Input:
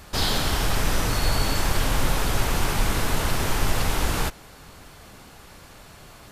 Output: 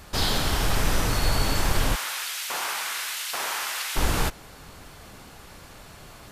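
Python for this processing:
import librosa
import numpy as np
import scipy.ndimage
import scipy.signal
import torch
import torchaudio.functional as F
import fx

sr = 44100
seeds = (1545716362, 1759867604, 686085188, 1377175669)

y = fx.rider(x, sr, range_db=10, speed_s=0.5)
y = fx.filter_lfo_highpass(y, sr, shape='saw_up', hz=1.2, low_hz=660.0, high_hz=2900.0, q=0.82, at=(1.94, 3.95), fade=0.02)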